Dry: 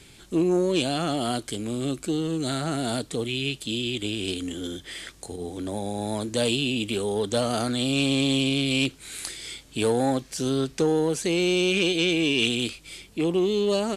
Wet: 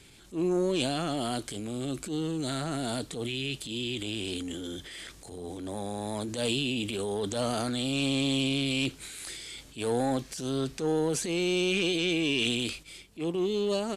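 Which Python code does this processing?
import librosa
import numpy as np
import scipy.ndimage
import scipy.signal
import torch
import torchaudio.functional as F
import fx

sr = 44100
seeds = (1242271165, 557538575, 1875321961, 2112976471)

y = fx.transient(x, sr, attack_db=-9, sustain_db=fx.steps((0.0, 6.0), (12.82, -4.0)))
y = y * librosa.db_to_amplitude(-4.5)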